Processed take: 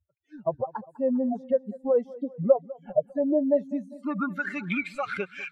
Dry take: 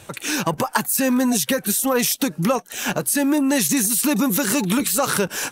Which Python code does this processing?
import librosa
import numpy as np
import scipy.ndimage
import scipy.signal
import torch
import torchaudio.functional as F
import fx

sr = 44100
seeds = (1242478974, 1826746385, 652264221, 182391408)

p1 = fx.bin_expand(x, sr, power=2.0)
p2 = fx.filter_sweep_lowpass(p1, sr, from_hz=600.0, to_hz=2300.0, start_s=3.58, end_s=4.67, q=7.5)
p3 = fx.noise_reduce_blind(p2, sr, reduce_db=25)
p4 = p3 + fx.echo_feedback(p3, sr, ms=200, feedback_pct=53, wet_db=-20, dry=0)
y = F.gain(torch.from_numpy(p4), -7.5).numpy()